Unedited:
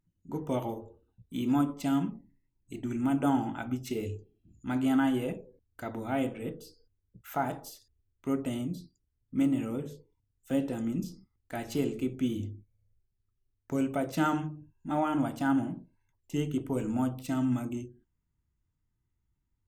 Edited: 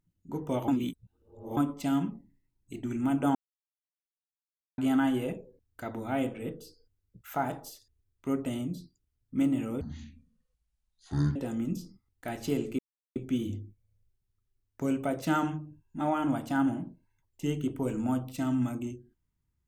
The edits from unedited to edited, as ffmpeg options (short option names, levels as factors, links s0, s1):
-filter_complex "[0:a]asplit=8[s0][s1][s2][s3][s4][s5][s6][s7];[s0]atrim=end=0.682[s8];[s1]atrim=start=0.678:end=1.572,asetpts=PTS-STARTPTS,areverse[s9];[s2]atrim=start=1.568:end=3.35,asetpts=PTS-STARTPTS,afade=t=out:st=1.778:d=0.004:c=hsin[s10];[s3]atrim=start=3.35:end=4.78,asetpts=PTS-STARTPTS,volume=0[s11];[s4]atrim=start=4.78:end=9.814,asetpts=PTS-STARTPTS,afade=t=in:d=0.004:c=hsin[s12];[s5]atrim=start=9.81:end=10.63,asetpts=PTS-STARTPTS,asetrate=23373,aresample=44100,atrim=end_sample=68230,asetpts=PTS-STARTPTS[s13];[s6]atrim=start=10.626:end=12.06,asetpts=PTS-STARTPTS,afade=t=out:st=1.43:d=0.004:c=hsin,apad=pad_dur=0.37[s14];[s7]atrim=start=12.06,asetpts=PTS-STARTPTS,afade=t=in:d=0.004:c=hsin[s15];[s8][s9]acrossfade=d=0.004:c1=hsin:c2=hsin[s16];[s10][s11][s12]concat=n=3:v=0:a=1[s17];[s16][s17]acrossfade=d=0.004:c1=hsin:c2=hsin[s18];[s18][s13]acrossfade=d=0.004:c1=hsin:c2=hsin[s19];[s14][s15]concat=n=2:v=0:a=1[s20];[s19][s20]acrossfade=d=0.004:c1=hsin:c2=hsin"